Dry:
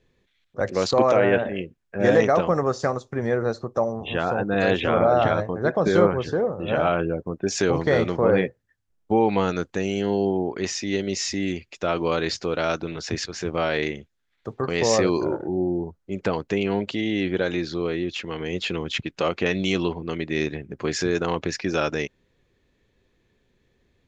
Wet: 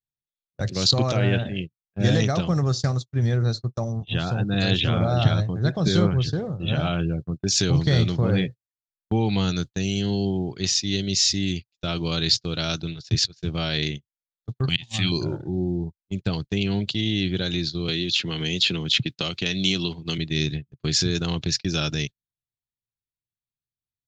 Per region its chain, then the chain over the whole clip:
14.69–15.12 s: FFT filter 170 Hz 0 dB, 310 Hz -3 dB, 460 Hz -25 dB, 760 Hz +1 dB, 1.1 kHz -4 dB, 3.2 kHz +12 dB, 5.2 kHz -14 dB, 9.7 kHz +10 dB + slow attack 317 ms
17.88–20.18 s: high-pass 200 Hz 6 dB/octave + three bands compressed up and down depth 100%
whole clip: gate -30 dBFS, range -39 dB; graphic EQ 125/250/500/1000/2000/4000 Hz +10/-4/-11/-10/-8/+11 dB; trim +3 dB

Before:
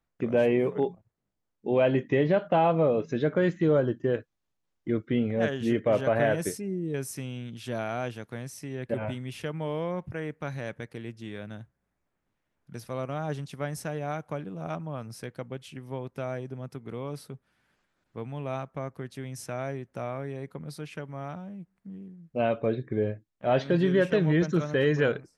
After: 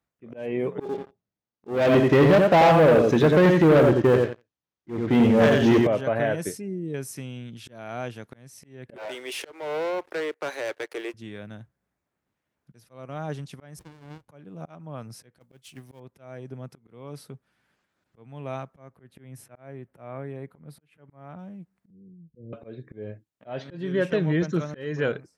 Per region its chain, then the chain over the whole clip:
0.80–5.87 s: brick-wall FIR low-pass 6.8 kHz + feedback delay 88 ms, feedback 21%, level -5 dB + waveshaping leveller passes 3
8.96–11.14 s: steep high-pass 340 Hz 48 dB/octave + waveshaping leveller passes 3
13.79–14.29 s: amplifier tone stack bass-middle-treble 10-0-10 + upward compressor, threshold -58 dBFS + sliding maximum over 65 samples
15.40–16.00 s: companding laws mixed up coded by mu + treble shelf 3.5 kHz +9.5 dB + expander -34 dBFS
18.95–21.39 s: peaking EQ 5.8 kHz -14 dB 1.2 oct + slow attack 209 ms
21.90–22.53 s: rippled Chebyshev low-pass 510 Hz, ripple 6 dB + bass shelf 94 Hz +12 dB
whole clip: high-pass 63 Hz; slow attack 327 ms

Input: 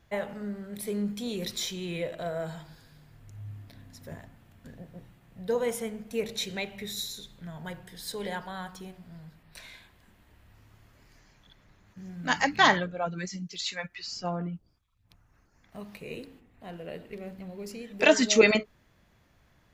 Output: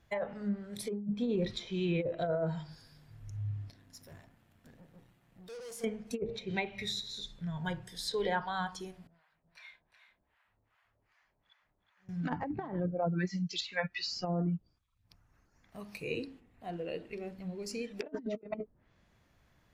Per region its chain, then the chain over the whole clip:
3.70–5.84 s: bass shelf 140 Hz -5.5 dB + valve stage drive 46 dB, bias 0.65
9.07–12.09 s: three-band isolator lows -15 dB, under 590 Hz, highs -17 dB, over 3.1 kHz + harmonic tremolo 2.6 Hz, depth 100%, crossover 670 Hz + delay 368 ms -7 dB
whole clip: spectral noise reduction 9 dB; low-pass that closes with the level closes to 520 Hz, closed at -27 dBFS; compressor with a negative ratio -34 dBFS, ratio -0.5; trim +1.5 dB

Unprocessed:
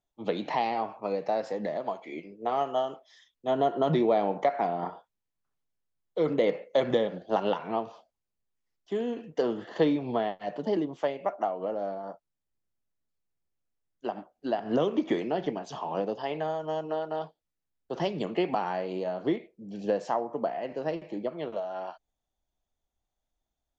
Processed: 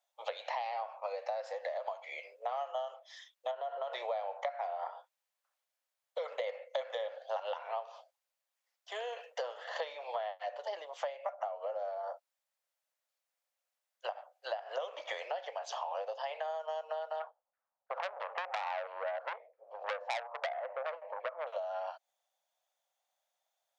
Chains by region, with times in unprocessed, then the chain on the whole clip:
3.51–3.92 s: distance through air 130 m + compression, threshold -26 dBFS
17.20–21.47 s: LFO low-pass saw down 3 Hz 730–1600 Hz + transformer saturation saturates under 2.6 kHz
whole clip: Chebyshev high-pass 520 Hz, order 6; compression 4:1, threshold -43 dBFS; trim +6 dB

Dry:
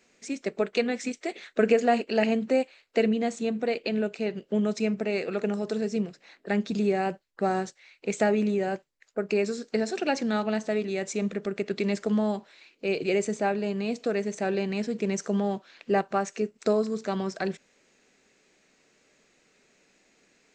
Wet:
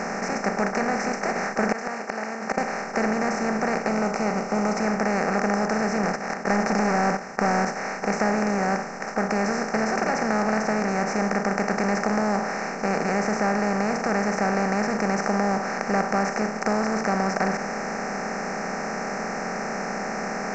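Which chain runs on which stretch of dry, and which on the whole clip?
1.72–2.58 s: high-pass 990 Hz + inverted gate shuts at -27 dBFS, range -29 dB
3.88–4.80 s: Butterworth band-stop 1.7 kHz, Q 2.5 + treble shelf 4.9 kHz +5.5 dB
6.03–7.65 s: gate -52 dBFS, range -8 dB + high-pass 56 Hz + waveshaping leveller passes 2
whole clip: spectral levelling over time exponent 0.2; FFT filter 200 Hz 0 dB, 380 Hz -8 dB, 980 Hz +5 dB, 2.1 kHz +1 dB, 3.5 kHz -27 dB, 5.3 kHz +4 dB, 10 kHz -17 dB; trim -5.5 dB

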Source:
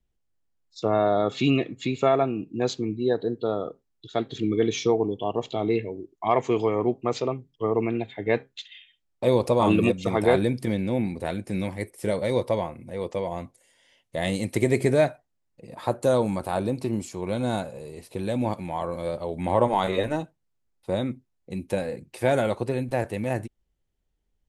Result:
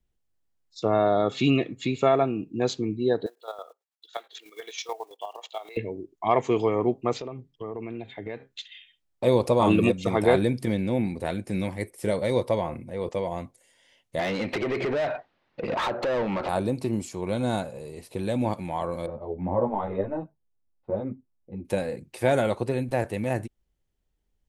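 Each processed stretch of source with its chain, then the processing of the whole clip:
3.26–5.77 s: block-companded coder 7-bit + high-pass 670 Hz 24 dB/octave + square tremolo 9.2 Hz, depth 65%, duty 35%
7.14–8.51 s: compression, threshold -31 dBFS + treble shelf 9.8 kHz -9.5 dB
12.61–13.09 s: treble shelf 3.9 kHz -4.5 dB + decay stretcher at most 71 dB/s
14.19–16.49 s: low-pass 4.1 kHz 24 dB/octave + compression 5:1, threshold -36 dBFS + overdrive pedal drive 31 dB, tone 2.5 kHz, clips at -17.5 dBFS
19.06–21.65 s: low-pass 1 kHz + three-phase chorus
whole clip: none

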